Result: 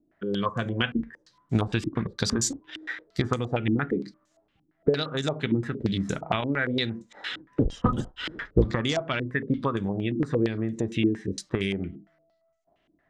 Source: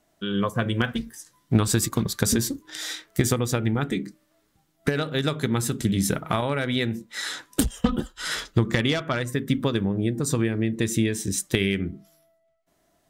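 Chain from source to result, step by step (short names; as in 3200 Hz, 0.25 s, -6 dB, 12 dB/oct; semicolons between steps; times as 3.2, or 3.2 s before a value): 7.31–8.71 octaver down 1 oct, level +1 dB; stepped low-pass 8.7 Hz 310–6900 Hz; gain -4.5 dB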